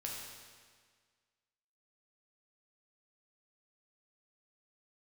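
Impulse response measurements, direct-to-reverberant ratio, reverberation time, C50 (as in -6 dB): -3.0 dB, 1.7 s, 0.5 dB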